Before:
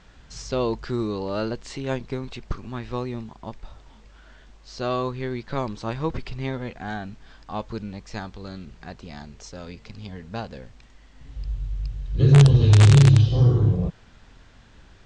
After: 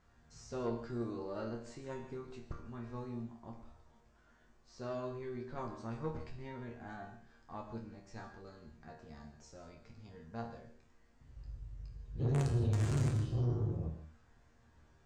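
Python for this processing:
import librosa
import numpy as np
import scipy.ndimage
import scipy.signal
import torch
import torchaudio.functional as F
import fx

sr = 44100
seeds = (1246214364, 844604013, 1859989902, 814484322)

y = fx.peak_eq(x, sr, hz=3400.0, db=-10.5, octaves=1.3)
y = fx.resonator_bank(y, sr, root=39, chord='fifth', decay_s=0.3)
y = fx.tube_stage(y, sr, drive_db=26.0, bias=0.4)
y = fx.rev_gated(y, sr, seeds[0], gate_ms=190, shape='flat', drr_db=7.5)
y = y * 10.0 ** (-1.0 / 20.0)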